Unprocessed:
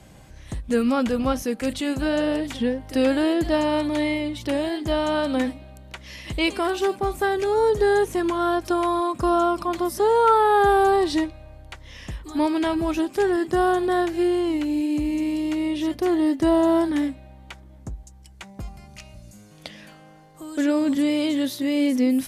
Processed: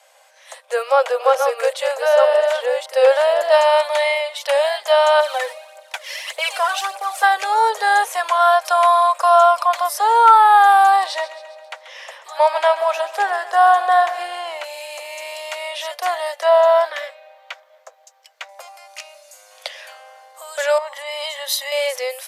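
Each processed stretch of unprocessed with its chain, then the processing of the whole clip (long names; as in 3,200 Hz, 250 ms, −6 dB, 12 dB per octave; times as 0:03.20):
0:00.65–0:03.52: delay that plays each chunk backwards 553 ms, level −4.5 dB + tilt shelving filter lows +6 dB, about 860 Hz
0:05.20–0:07.23: variable-slope delta modulation 64 kbit/s + phase shifter 1.7 Hz, delay 2.2 ms, feedback 54% + downward compressor 2 to 1, threshold −27 dBFS
0:11.06–0:14.64: spectral tilt −2 dB per octave + repeating echo 135 ms, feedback 52%, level −13.5 dB
0:16.42–0:18.49: parametric band 9,600 Hz −14.5 dB 0.84 octaves + notch filter 870 Hz, Q 5.7
0:20.78–0:21.72: downward compressor, threshold −23 dBFS + comb filter 1 ms, depth 52% + multiband upward and downward expander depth 100%
whole clip: Butterworth high-pass 520 Hz 72 dB per octave; dynamic equaliser 970 Hz, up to +3 dB, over −33 dBFS, Q 0.83; automatic gain control gain up to 8 dB; level +1 dB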